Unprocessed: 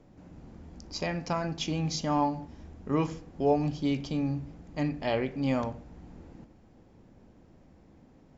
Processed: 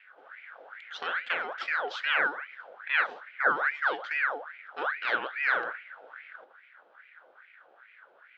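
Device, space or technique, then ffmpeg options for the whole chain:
voice changer toy: -af "aeval=exprs='val(0)*sin(2*PI*1400*n/s+1400*0.6/2.4*sin(2*PI*2.4*n/s))':c=same,highpass=500,equalizer=f=510:t=q:w=4:g=6,equalizer=f=990:t=q:w=4:g=-6,equalizer=f=1500:t=q:w=4:g=10,equalizer=f=3300:t=q:w=4:g=5,lowpass=f=3900:w=0.5412,lowpass=f=3900:w=1.3066"

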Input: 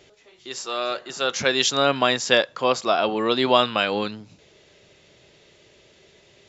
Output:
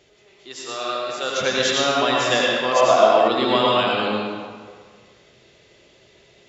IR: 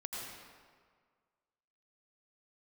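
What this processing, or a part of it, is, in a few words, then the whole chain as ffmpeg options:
stairwell: -filter_complex "[1:a]atrim=start_sample=2205[s0];[0:a][s0]afir=irnorm=-1:irlink=0,asettb=1/sr,asplit=3[s1][s2][s3];[s1]atrim=end=2.724[s4];[s2]atrim=start=2.72:end=3.28,asetpts=PTS-STARTPTS,afade=t=in:d=0.004:c=qsin,afade=t=out:st=0.556:d=0.004:c=qsin,equalizer=f=630:t=o:w=0.33:g=10,equalizer=f=1000:t=o:w=0.33:g=6,equalizer=f=2000:t=o:w=0.33:g=6,equalizer=f=6300:t=o:w=0.33:g=9[s5];[s3]atrim=start=3.276[s6];[s4][s5]acrossfade=d=0.004:c1=hsin:c2=qsin[s7];[s7][s6]acrossfade=d=0.004:c1=qsin:c2=hsin,volume=1.12"

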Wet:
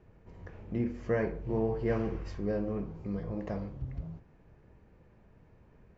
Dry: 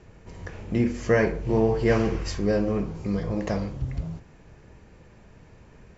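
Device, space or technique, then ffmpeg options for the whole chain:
through cloth: -af "lowpass=6400,highshelf=f=2700:g=-13,volume=0.376"

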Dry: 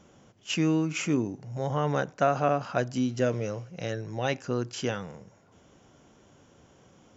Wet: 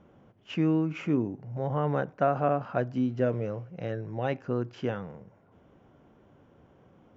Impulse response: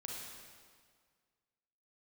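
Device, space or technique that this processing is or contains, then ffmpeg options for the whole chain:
phone in a pocket: -af "lowpass=3000,highshelf=f=2100:g=-10"

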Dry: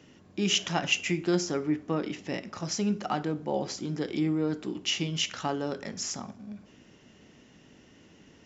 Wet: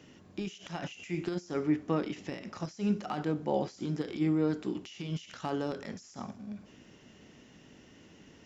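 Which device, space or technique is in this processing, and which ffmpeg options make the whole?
de-esser from a sidechain: -filter_complex "[0:a]asplit=2[s0][s1];[s1]highpass=5200,apad=whole_len=372899[s2];[s0][s2]sidechaincompress=threshold=0.002:ratio=20:attack=4.3:release=39"

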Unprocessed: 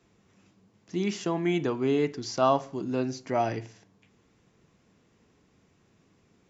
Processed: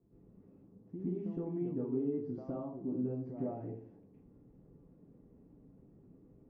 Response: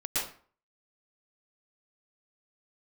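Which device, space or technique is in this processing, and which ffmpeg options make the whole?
television next door: -filter_complex "[0:a]acompressor=threshold=0.0112:ratio=5,lowpass=380[s0];[1:a]atrim=start_sample=2205[s1];[s0][s1]afir=irnorm=-1:irlink=0"

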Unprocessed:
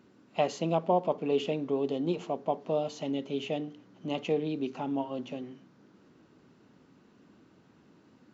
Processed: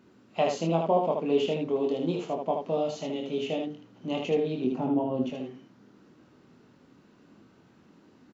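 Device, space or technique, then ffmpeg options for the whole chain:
slapback doubling: -filter_complex "[0:a]asettb=1/sr,asplit=3[s0][s1][s2];[s0]atrim=end=4.644[s3];[s1]atrim=start=4.64:end=5.22,asetpts=PTS-STARTPTS,afade=t=in:d=0.004:c=qsin,afade=t=out:st=0.576:d=0.004:c=qsin,tiltshelf=f=850:g=8.5[s4];[s2]atrim=start=5.216[s5];[s3][s4]acrossfade=d=0.004:c1=hsin:c2=qsin[s6];[s6][s5]acrossfade=d=0.004:c1=qsin:c2=hsin,asplit=3[s7][s8][s9];[s8]adelay=24,volume=0.596[s10];[s9]adelay=77,volume=0.631[s11];[s7][s10][s11]amix=inputs=3:normalize=0"

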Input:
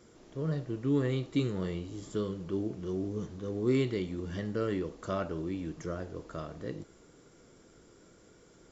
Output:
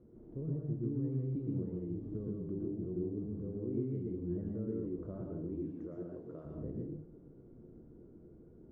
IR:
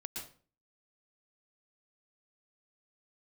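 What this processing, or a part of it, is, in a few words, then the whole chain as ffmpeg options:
television next door: -filter_complex "[0:a]asettb=1/sr,asplit=3[s0][s1][s2];[s0]atrim=end=5.534[s3];[s1]atrim=start=5.53:end=6.45,asetpts=PTS-STARTPTS,afade=t=in:d=0.004:c=qsin,afade=t=out:st=0.916:d=0.004:c=qsin,aemphasis=mode=production:type=riaa[s4];[s2]atrim=start=6.446[s5];[s3][s4]acrossfade=d=0.004:c1=hsin:c2=qsin[s6];[s6][s5]acrossfade=d=0.004:c1=qsin:c2=hsin,acompressor=threshold=0.0126:ratio=5,lowpass=380[s7];[1:a]atrim=start_sample=2205[s8];[s7][s8]afir=irnorm=-1:irlink=0,volume=1.88"

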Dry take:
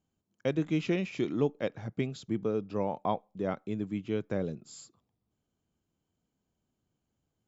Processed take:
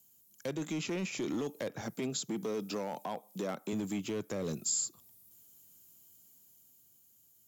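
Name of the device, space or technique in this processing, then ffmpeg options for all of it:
FM broadcast chain: -filter_complex "[0:a]highpass=70,dynaudnorm=f=220:g=11:m=1.68,acrossover=split=160|1600[s0][s1][s2];[s0]acompressor=threshold=0.00447:ratio=4[s3];[s1]acompressor=threshold=0.0562:ratio=4[s4];[s2]acompressor=threshold=0.002:ratio=4[s5];[s3][s4][s5]amix=inputs=3:normalize=0,aemphasis=mode=production:type=75fm,alimiter=level_in=1.58:limit=0.0631:level=0:latency=1:release=23,volume=0.631,asoftclip=type=hard:threshold=0.0282,lowpass=f=15000:w=0.5412,lowpass=f=15000:w=1.3066,aemphasis=mode=production:type=75fm,asettb=1/sr,asplit=3[s6][s7][s8];[s6]atrim=end=1.814[s9];[s7]atrim=start=1.81:end=3.73,asetpts=PTS-STARTPTS,afade=t=in:d=0.004:c=qsin,afade=t=out:st=1.916:d=0.004:c=qsin,highpass=f=140:w=0.5412,highpass=f=140:w=1.3066[s10];[s8]atrim=start=3.726[s11];[s9][s10]acrossfade=d=0.004:c1=hsin:c2=qsin[s12];[s12][s11]acrossfade=d=0.004:c1=qsin:c2=hsin,volume=1.26"

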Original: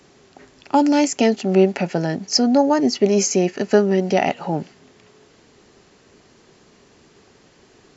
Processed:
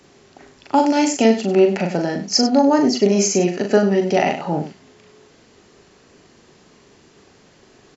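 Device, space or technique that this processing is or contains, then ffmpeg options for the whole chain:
slapback doubling: -filter_complex "[0:a]asplit=3[s0][s1][s2];[s1]adelay=40,volume=0.562[s3];[s2]adelay=97,volume=0.282[s4];[s0][s3][s4]amix=inputs=3:normalize=0"

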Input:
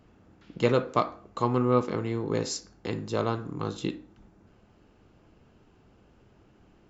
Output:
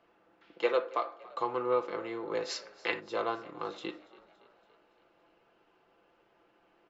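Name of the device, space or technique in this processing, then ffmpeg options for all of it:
DJ mixer with the lows and highs turned down: -filter_complex "[0:a]asettb=1/sr,asplit=3[s0][s1][s2];[s0]atrim=end=0.544[s3];[s1]atrim=start=0.54:end=1.23,asetpts=PTS-STARTPTS,afade=t=in:d=0.004:c=qsin,afade=t=out:st=0.686:d=0.004:c=qsin,highpass=290[s4];[s2]atrim=start=1.226[s5];[s3][s4]acrossfade=d=0.004:c1=hsin:c2=qsin[s6];[s6][s5]acrossfade=d=0.004:c1=qsin:c2=hsin,acrossover=split=380 4300:gain=0.0708 1 0.126[s7][s8][s9];[s7][s8][s9]amix=inputs=3:normalize=0,alimiter=limit=0.15:level=0:latency=1:release=282,asplit=3[s10][s11][s12];[s10]afade=t=out:st=2.48:d=0.02[s13];[s11]equalizer=f=2100:t=o:w=2.4:g=12,afade=t=in:st=2.48:d=0.02,afade=t=out:st=2.99:d=0.02[s14];[s12]afade=t=in:st=2.99:d=0.02[s15];[s13][s14][s15]amix=inputs=3:normalize=0,aecho=1:1:5.9:0.45,asplit=6[s16][s17][s18][s19][s20][s21];[s17]adelay=283,afreqshift=34,volume=0.0841[s22];[s18]adelay=566,afreqshift=68,volume=0.0495[s23];[s19]adelay=849,afreqshift=102,volume=0.0292[s24];[s20]adelay=1132,afreqshift=136,volume=0.0174[s25];[s21]adelay=1415,afreqshift=170,volume=0.0102[s26];[s16][s22][s23][s24][s25][s26]amix=inputs=6:normalize=0,volume=0.794"

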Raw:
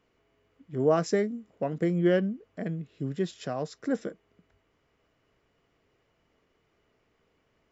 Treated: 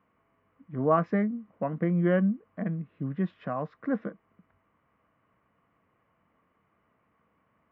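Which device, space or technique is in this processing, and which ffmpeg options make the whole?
bass cabinet: -af "highpass=71,equalizer=f=200:t=q:w=4:g=6,equalizer=f=400:t=q:w=4:g=-9,equalizer=f=1100:t=q:w=4:g=9,lowpass=f=2300:w=0.5412,lowpass=f=2300:w=1.3066"

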